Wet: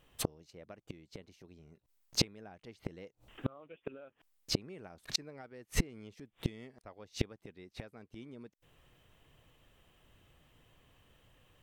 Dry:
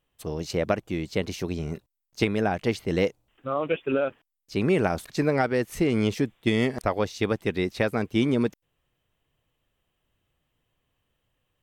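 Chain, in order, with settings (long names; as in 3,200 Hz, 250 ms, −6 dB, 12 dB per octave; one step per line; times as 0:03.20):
high-shelf EQ 10,000 Hz −4.5 dB
gate with flip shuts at −26 dBFS, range −37 dB
level +10.5 dB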